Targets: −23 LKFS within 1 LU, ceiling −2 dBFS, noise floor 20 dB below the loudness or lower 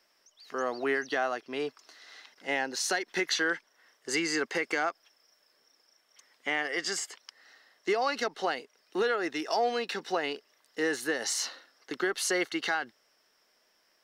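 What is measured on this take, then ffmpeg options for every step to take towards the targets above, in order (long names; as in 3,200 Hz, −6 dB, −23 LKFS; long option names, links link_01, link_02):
integrated loudness −31.0 LKFS; sample peak −18.0 dBFS; target loudness −23.0 LKFS
→ -af "volume=8dB"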